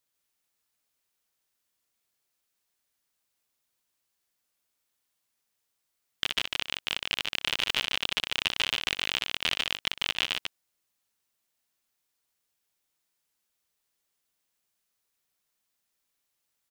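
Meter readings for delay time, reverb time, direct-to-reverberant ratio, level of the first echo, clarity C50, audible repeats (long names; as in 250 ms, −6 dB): 61 ms, no reverb audible, no reverb audible, −13.5 dB, no reverb audible, 2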